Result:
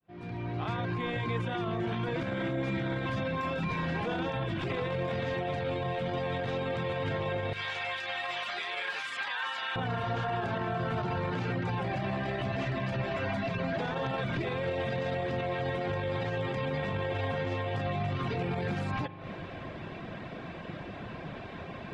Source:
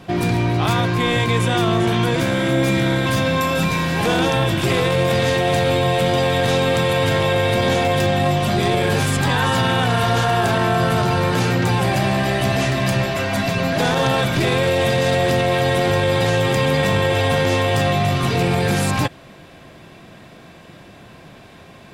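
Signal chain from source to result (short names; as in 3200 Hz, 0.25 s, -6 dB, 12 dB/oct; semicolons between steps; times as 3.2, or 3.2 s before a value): opening faded in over 4.00 s; 7.53–9.76 HPF 1500 Hz 12 dB/oct; compressor 6:1, threshold -27 dBFS, peak gain reduction 12.5 dB; reverb removal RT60 0.53 s; reverb RT60 3.2 s, pre-delay 40 ms, DRR 18.5 dB; limiter -26.5 dBFS, peak gain reduction 9 dB; LPF 2800 Hz 12 dB/oct; gain +3 dB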